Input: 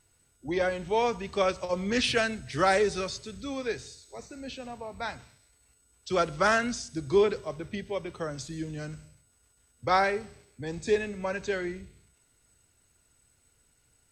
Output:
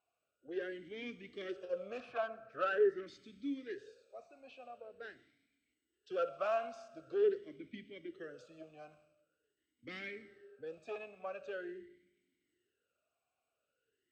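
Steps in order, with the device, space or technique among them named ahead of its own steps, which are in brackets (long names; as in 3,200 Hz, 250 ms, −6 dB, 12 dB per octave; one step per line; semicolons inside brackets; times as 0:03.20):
0:02.00–0:03.07: high shelf with overshoot 2,100 Hz −11.5 dB, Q 3
four-comb reverb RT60 1.3 s, combs from 25 ms, DRR 15.5 dB
talk box (tube saturation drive 22 dB, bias 0.45; formant filter swept between two vowels a-i 0.45 Hz)
level +1 dB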